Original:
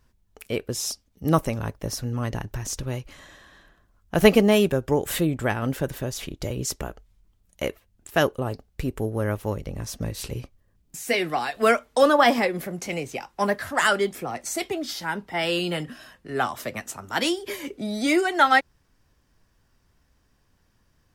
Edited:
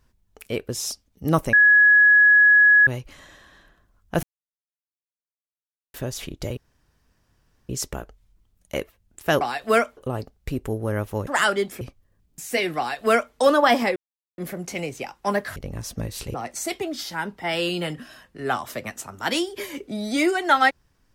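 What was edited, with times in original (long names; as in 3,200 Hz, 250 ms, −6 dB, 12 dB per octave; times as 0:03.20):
0:01.53–0:02.87: beep over 1,680 Hz −10.5 dBFS
0:04.23–0:05.94: silence
0:06.57: splice in room tone 1.12 s
0:09.59–0:10.37: swap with 0:13.70–0:14.24
0:11.34–0:11.90: duplicate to 0:08.29
0:12.52: splice in silence 0.42 s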